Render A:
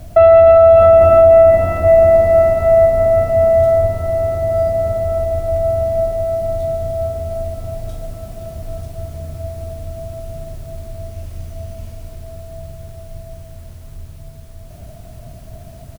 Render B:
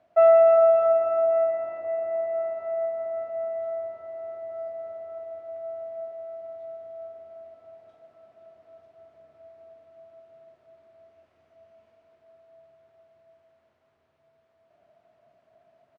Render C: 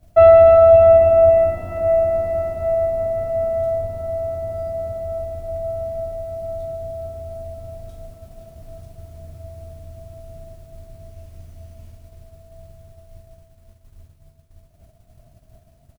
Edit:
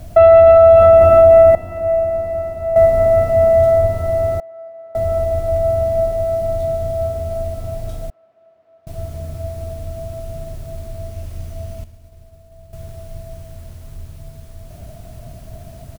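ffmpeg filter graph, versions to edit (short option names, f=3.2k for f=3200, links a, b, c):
-filter_complex "[2:a]asplit=2[a][b];[1:a]asplit=2[c][d];[0:a]asplit=5[e][f][g][h][i];[e]atrim=end=1.552[j];[a]atrim=start=1.548:end=2.762[k];[f]atrim=start=2.758:end=4.402[l];[c]atrim=start=4.398:end=4.952[m];[g]atrim=start=4.948:end=8.102[n];[d]atrim=start=8.098:end=8.872[o];[h]atrim=start=8.868:end=11.842[p];[b]atrim=start=11.838:end=12.732[q];[i]atrim=start=12.728[r];[j][k]acrossfade=d=0.004:c1=hsin:c2=hsin[s];[s][l]acrossfade=d=0.004:c1=hsin:c2=hsin[t];[t][m]acrossfade=d=0.004:c1=hsin:c2=hsin[u];[u][n]acrossfade=d=0.004:c1=hsin:c2=hsin[v];[v][o]acrossfade=d=0.004:c1=hsin:c2=hsin[w];[w][p]acrossfade=d=0.004:c1=hsin:c2=hsin[x];[x][q]acrossfade=d=0.004:c1=hsin:c2=hsin[y];[y][r]acrossfade=d=0.004:c1=hsin:c2=hsin"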